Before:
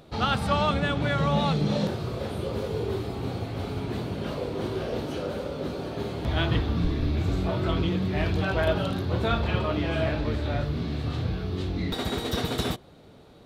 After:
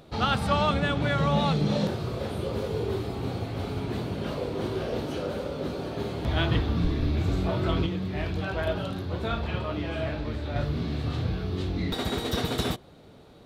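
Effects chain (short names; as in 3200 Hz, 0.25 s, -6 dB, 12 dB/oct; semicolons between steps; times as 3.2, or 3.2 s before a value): 7.86–10.56 flange 1 Hz, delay 9.1 ms, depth 6 ms, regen -74%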